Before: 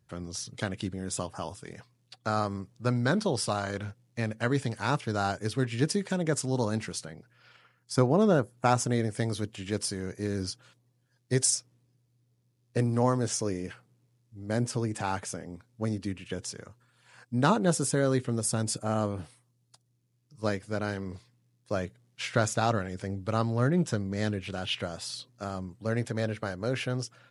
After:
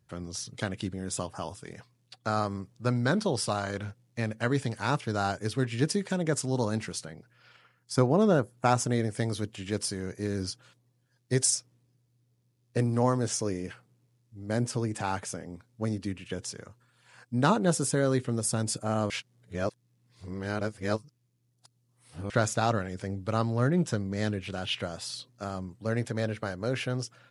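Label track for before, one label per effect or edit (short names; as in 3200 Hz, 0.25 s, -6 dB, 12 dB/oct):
19.100000	22.300000	reverse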